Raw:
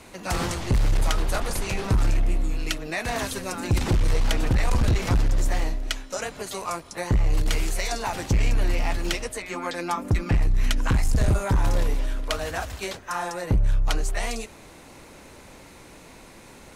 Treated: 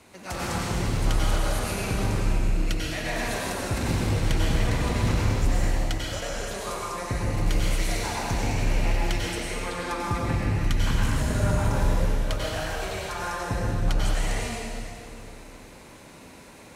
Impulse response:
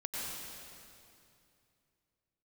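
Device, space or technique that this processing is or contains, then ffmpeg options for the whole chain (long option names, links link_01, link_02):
stairwell: -filter_complex "[1:a]atrim=start_sample=2205[link_01];[0:a][link_01]afir=irnorm=-1:irlink=0,highpass=53,volume=-3dB"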